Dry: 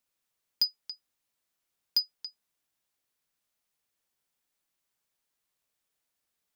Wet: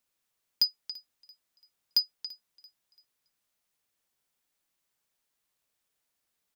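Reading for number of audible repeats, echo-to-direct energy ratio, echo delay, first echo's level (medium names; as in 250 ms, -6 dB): 2, -21.5 dB, 338 ms, -22.0 dB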